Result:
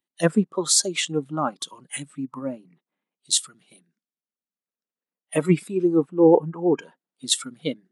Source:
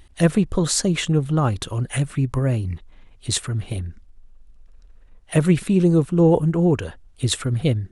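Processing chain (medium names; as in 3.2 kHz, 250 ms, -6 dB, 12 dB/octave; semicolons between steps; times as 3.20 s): spectral noise reduction 14 dB; brick-wall FIR high-pass 160 Hz; three bands expanded up and down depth 40%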